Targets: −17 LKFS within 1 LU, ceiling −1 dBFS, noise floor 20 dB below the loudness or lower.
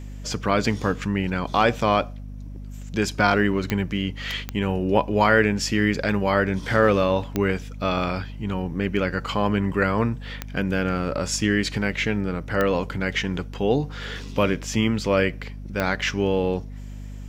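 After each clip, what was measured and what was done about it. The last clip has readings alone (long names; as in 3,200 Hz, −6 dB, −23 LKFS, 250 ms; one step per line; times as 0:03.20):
number of clicks 6; mains hum 50 Hz; hum harmonics up to 250 Hz; level of the hum −33 dBFS; integrated loudness −23.5 LKFS; sample peak −4.0 dBFS; target loudness −17.0 LKFS
→ click removal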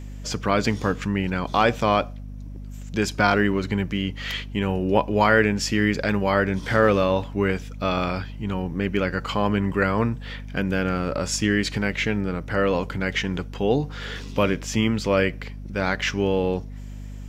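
number of clicks 0; mains hum 50 Hz; hum harmonics up to 250 Hz; level of the hum −33 dBFS
→ hum removal 50 Hz, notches 5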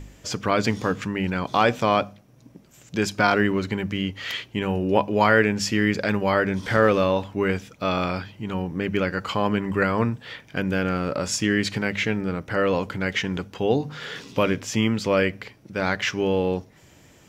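mains hum none found; integrated loudness −24.0 LKFS; sample peak −3.5 dBFS; target loudness −17.0 LKFS
→ level +7 dB
brickwall limiter −1 dBFS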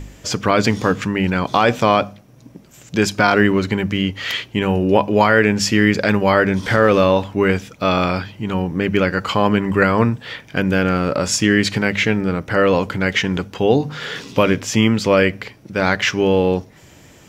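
integrated loudness −17.5 LKFS; sample peak −1.0 dBFS; background noise floor −46 dBFS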